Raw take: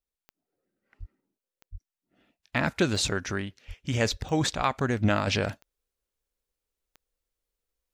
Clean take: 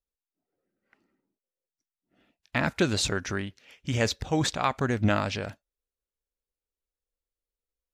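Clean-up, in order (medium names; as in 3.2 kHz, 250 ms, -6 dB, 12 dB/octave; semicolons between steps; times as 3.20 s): de-click; de-plosive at 0.99/1.71/3.67/4.10/4.56 s; trim 0 dB, from 5.27 s -6 dB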